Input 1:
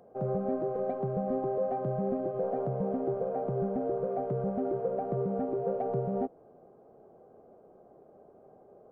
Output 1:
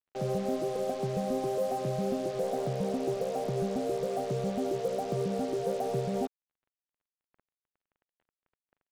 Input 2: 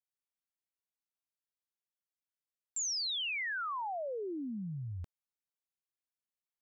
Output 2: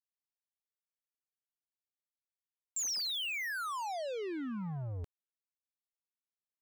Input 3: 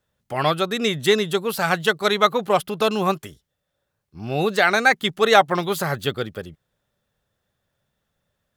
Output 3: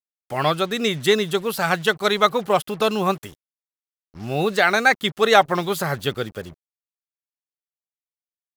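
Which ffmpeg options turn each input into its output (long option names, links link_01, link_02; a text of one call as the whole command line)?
ffmpeg -i in.wav -af "acrusher=bits=6:mix=0:aa=0.5" out.wav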